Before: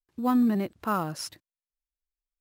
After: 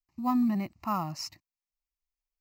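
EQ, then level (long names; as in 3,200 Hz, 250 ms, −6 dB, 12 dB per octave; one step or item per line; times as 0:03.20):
phaser with its sweep stopped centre 2,300 Hz, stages 8
0.0 dB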